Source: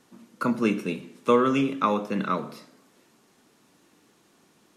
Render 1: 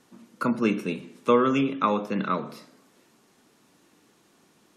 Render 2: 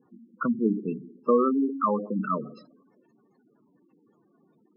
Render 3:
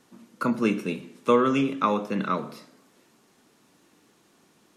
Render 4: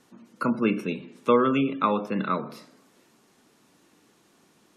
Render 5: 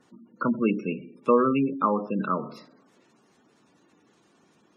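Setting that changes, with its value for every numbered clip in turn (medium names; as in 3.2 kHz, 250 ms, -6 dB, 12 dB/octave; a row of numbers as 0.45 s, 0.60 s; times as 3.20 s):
spectral gate, under each frame's peak: -45 dB, -10 dB, -60 dB, -35 dB, -20 dB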